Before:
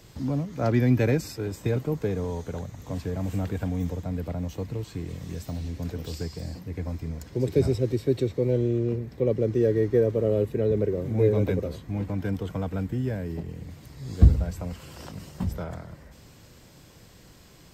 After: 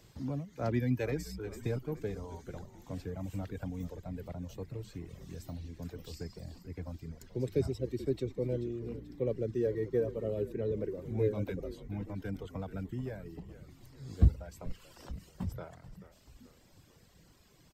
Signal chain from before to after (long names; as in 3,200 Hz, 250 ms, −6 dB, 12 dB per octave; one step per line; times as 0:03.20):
reverb reduction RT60 1.4 s
echo with shifted repeats 435 ms, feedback 52%, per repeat −63 Hz, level −14 dB
level −8 dB